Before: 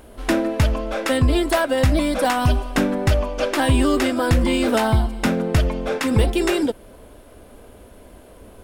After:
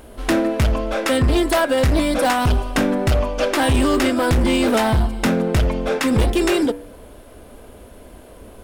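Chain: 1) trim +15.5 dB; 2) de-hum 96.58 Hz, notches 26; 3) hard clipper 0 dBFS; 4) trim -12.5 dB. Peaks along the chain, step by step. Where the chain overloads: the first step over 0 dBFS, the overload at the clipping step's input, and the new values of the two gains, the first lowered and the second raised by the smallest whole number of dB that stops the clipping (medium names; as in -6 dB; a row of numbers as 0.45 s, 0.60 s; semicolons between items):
+7.5 dBFS, +8.5 dBFS, 0.0 dBFS, -12.5 dBFS; step 1, 8.5 dB; step 1 +6.5 dB, step 4 -3.5 dB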